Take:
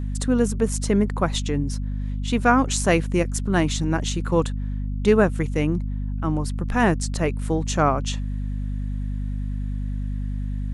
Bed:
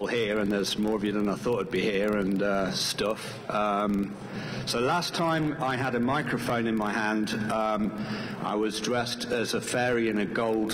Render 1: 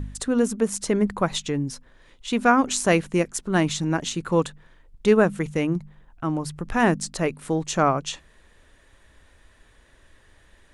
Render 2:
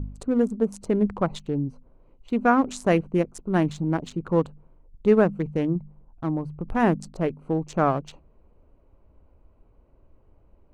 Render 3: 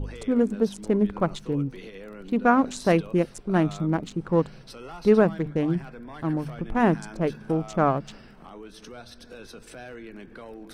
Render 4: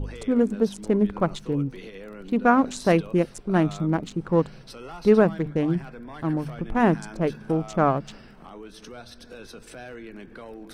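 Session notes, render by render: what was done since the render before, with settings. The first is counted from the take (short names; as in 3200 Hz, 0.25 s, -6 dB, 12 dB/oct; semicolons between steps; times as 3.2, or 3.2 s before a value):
de-hum 50 Hz, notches 5
Wiener smoothing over 25 samples; high shelf 2200 Hz -11 dB
add bed -15.5 dB
gain +1 dB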